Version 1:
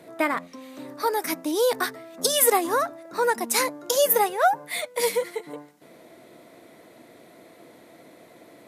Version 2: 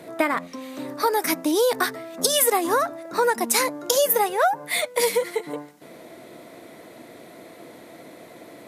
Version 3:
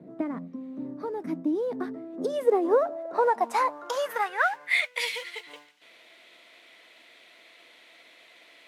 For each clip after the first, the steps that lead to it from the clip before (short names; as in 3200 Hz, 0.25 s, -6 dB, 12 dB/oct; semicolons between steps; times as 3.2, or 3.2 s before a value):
compressor 3:1, threshold -24 dBFS, peak gain reduction 8 dB; gain +6 dB
modulation noise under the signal 19 dB; band-pass sweep 200 Hz -> 2900 Hz, 1.59–5.12; gain +4 dB